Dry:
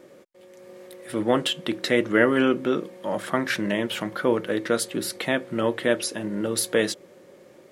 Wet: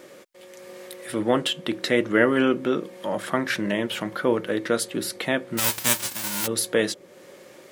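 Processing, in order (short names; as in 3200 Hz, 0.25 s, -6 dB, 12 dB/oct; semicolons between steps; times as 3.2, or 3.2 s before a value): 5.57–6.46 spectral whitening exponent 0.1; mismatched tape noise reduction encoder only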